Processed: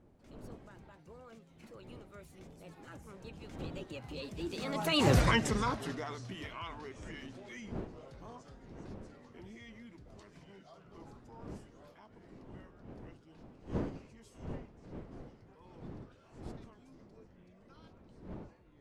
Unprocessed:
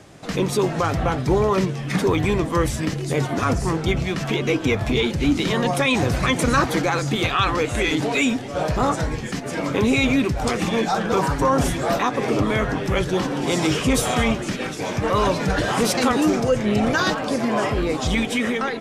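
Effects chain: Doppler pass-by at 5.16, 55 m/s, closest 6.4 m; wind noise 320 Hz -47 dBFS; gain -3 dB

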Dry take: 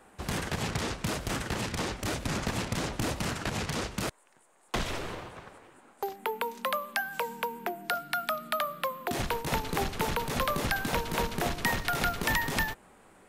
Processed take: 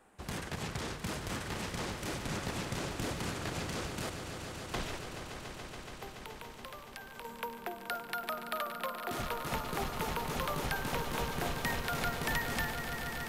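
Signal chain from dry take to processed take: 4.96–7.25 compressor, threshold -39 dBFS, peak gain reduction 12.5 dB; swelling echo 0.142 s, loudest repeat 5, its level -11.5 dB; gain -7 dB

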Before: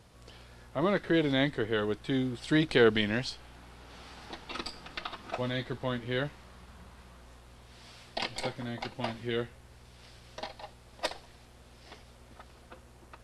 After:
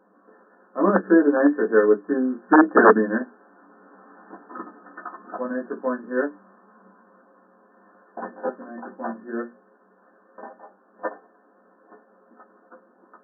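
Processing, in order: Wiener smoothing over 9 samples; reverb RT60 0.15 s, pre-delay 3 ms, DRR -0.5 dB; wrapped overs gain 5 dB; notches 60/120/180/240/300 Hz; FFT band-pass 190–1800 Hz; upward expander 1.5:1, over -29 dBFS; gain +1.5 dB

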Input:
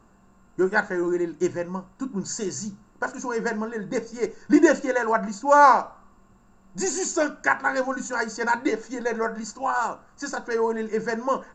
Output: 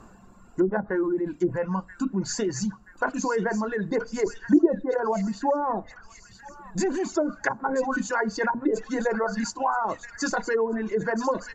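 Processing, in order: treble ducked by the level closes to 400 Hz, closed at -17.5 dBFS; thin delay 0.979 s, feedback 57%, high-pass 2400 Hz, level -7 dB; in parallel at -2 dB: negative-ratio compressor -32 dBFS, ratio -1; on the sum: reverb removal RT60 1.5 s

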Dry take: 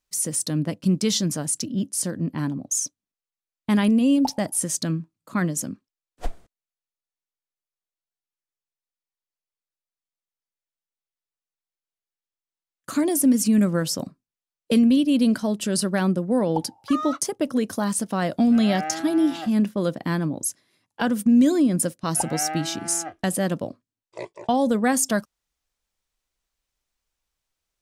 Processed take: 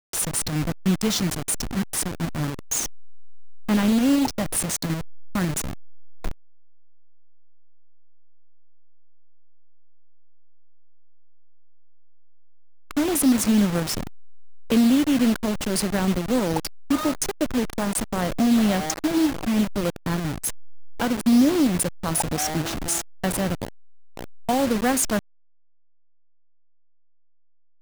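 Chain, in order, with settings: level-crossing sampler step -22.5 dBFS

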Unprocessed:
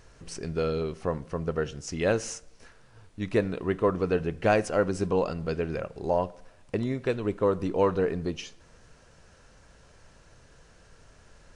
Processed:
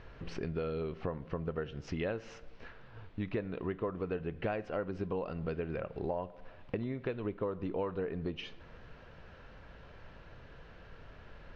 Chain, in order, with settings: LPF 3500 Hz 24 dB/oct; compressor 5:1, threshold -37 dBFS, peak gain reduction 17.5 dB; gain +3 dB

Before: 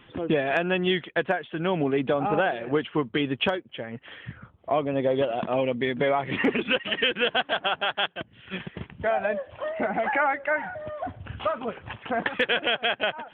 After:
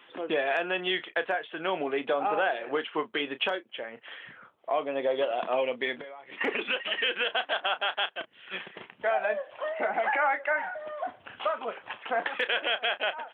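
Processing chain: HPF 500 Hz 12 dB/oct; limiter -17.5 dBFS, peak gain reduction 6.5 dB; 5.95–6.41 compressor 16:1, threshold -41 dBFS, peak gain reduction 18.5 dB; doubler 32 ms -13 dB

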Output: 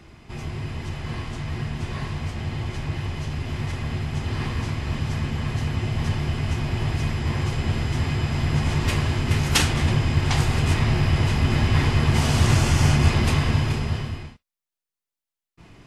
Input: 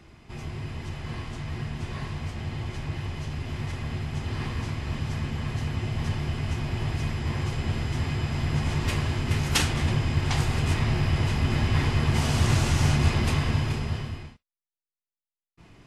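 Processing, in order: 12.52–13.09 notch 3900 Hz, Q 13; gain +4 dB

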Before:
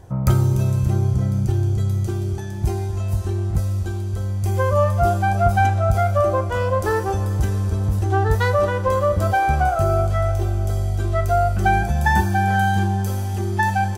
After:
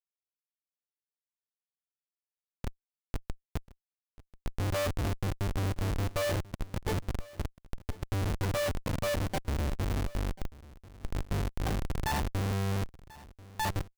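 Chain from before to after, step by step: opening faded in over 2.80 s; resonator 290 Hz, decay 0.18 s, harmonics all, mix 80%; Schmitt trigger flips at -25 dBFS; on a send: echo 1.039 s -20.5 dB

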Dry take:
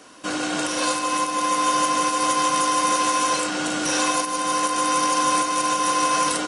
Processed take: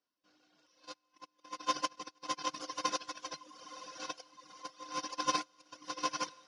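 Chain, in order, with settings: gate -16 dBFS, range -52 dB; resonant high shelf 6800 Hz -10.5 dB, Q 3; on a send: diffused feedback echo 0.95 s, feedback 56%, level -11 dB; on the sum: reverb removal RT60 1.1 s; gain +8 dB

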